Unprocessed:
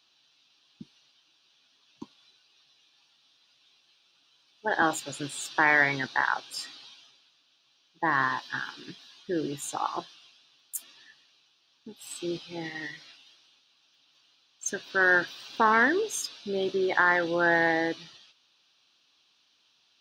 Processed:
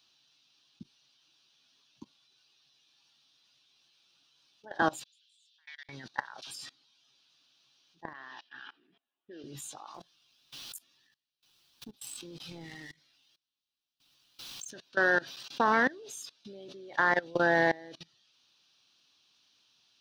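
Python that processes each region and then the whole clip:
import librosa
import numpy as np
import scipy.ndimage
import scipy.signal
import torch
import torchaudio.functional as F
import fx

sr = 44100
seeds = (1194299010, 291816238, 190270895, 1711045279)

y = fx.chain(x, sr, fx.ladder_bandpass(hz=3800.0, resonance_pct=55),
    fx.level_steps(step_db=21), at=(5.04, 5.89))
y = fx.chain(y, sr, fx.low_shelf(hz=130.0, db=9.5),
    fx.dispersion(late='lows', ms=52.0, hz=1200.0),
    fx.pre_swell(db_per_s=56.0), at=(6.42, 6.83))
y = fx.chain(y, sr, fx.env_lowpass(base_hz=700.0, full_db=-23.0),
    fx.cabinet(low_hz=410.0, low_slope=12, high_hz=5400.0, hz=(500.0, 1000.0, 1500.0, 2900.0, 4300.0), db=(-7, -8, -3, 4, -5)), at=(8.13, 9.44))
y = fx.chain(y, sr, fx.law_mismatch(coded='A'),
    fx.low_shelf(hz=160.0, db=5.5),
    fx.pre_swell(db_per_s=59.0), at=(9.94, 14.7))
y = fx.dynamic_eq(y, sr, hz=600.0, q=2.3, threshold_db=-41.0, ratio=4.0, max_db=6)
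y = fx.level_steps(y, sr, step_db=23)
y = fx.bass_treble(y, sr, bass_db=6, treble_db=5)
y = F.gain(torch.from_numpy(y), -2.0).numpy()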